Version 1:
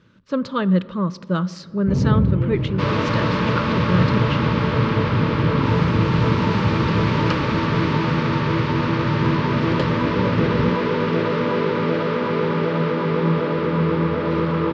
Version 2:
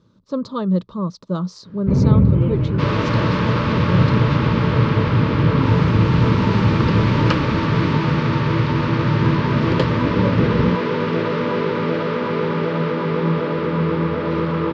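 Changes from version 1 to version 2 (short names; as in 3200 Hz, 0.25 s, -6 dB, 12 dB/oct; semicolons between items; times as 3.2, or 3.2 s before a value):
speech: add band shelf 2100 Hz -13 dB 1.3 oct; first sound +5.5 dB; reverb: off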